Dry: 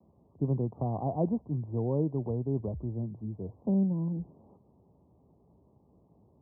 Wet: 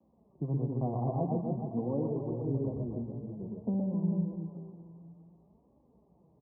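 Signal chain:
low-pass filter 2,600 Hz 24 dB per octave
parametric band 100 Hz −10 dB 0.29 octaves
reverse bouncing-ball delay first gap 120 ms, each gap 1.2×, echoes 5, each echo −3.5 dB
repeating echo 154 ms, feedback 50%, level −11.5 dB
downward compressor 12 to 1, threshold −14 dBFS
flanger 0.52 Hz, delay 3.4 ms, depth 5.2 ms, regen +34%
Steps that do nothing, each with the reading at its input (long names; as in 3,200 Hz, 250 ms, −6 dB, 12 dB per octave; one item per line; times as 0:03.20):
low-pass filter 2,600 Hz: nothing at its input above 810 Hz
downward compressor, threshold −14 dBFS: peak of its input −16.0 dBFS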